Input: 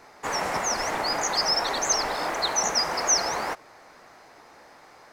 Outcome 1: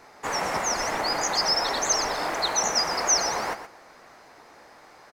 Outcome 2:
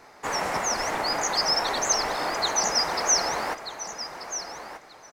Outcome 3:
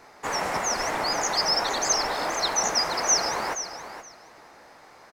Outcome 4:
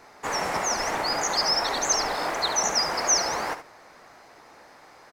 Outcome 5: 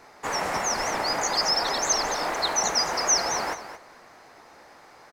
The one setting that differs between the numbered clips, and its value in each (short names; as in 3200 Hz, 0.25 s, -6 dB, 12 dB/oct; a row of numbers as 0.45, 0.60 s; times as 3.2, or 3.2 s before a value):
feedback echo, time: 120, 1234, 473, 71, 220 ms